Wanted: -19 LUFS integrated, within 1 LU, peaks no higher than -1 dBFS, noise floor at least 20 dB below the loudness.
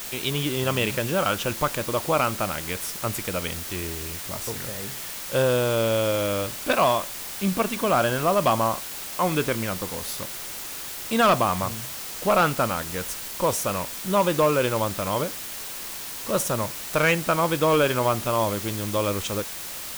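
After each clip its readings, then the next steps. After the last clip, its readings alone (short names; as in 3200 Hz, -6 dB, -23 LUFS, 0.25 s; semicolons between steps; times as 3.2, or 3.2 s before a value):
clipped 0.5%; flat tops at -13.0 dBFS; noise floor -35 dBFS; noise floor target -45 dBFS; loudness -24.5 LUFS; peak -13.0 dBFS; loudness target -19.0 LUFS
-> clip repair -13 dBFS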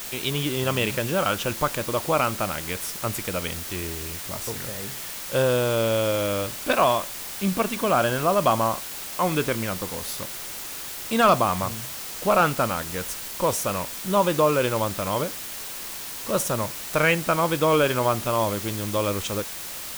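clipped 0.0%; noise floor -35 dBFS; noise floor target -45 dBFS
-> denoiser 10 dB, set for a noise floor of -35 dBFS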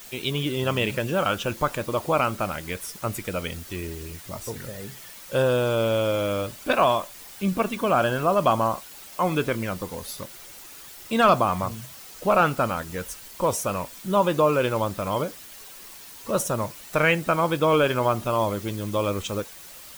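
noise floor -44 dBFS; noise floor target -45 dBFS
-> denoiser 6 dB, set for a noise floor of -44 dBFS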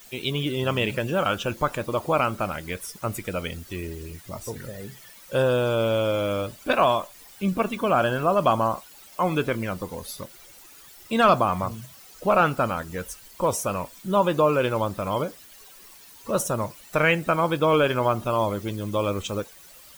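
noise floor -49 dBFS; loudness -24.5 LUFS; peak -7.0 dBFS; loudness target -19.0 LUFS
-> gain +5.5 dB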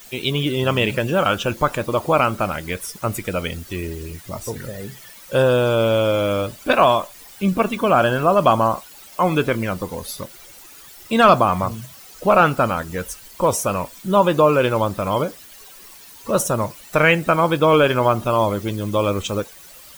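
loudness -19.0 LUFS; peak -1.5 dBFS; noise floor -43 dBFS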